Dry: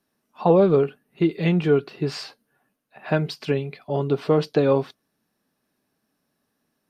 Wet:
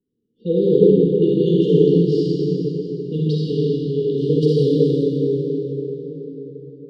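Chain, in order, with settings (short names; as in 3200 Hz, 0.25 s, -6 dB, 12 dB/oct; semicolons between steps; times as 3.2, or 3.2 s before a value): low-pass opened by the level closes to 1300 Hz, open at -15 dBFS; brick-wall FIR band-stop 520–2800 Hz; reverb RT60 5.1 s, pre-delay 33 ms, DRR -8 dB; gain -2.5 dB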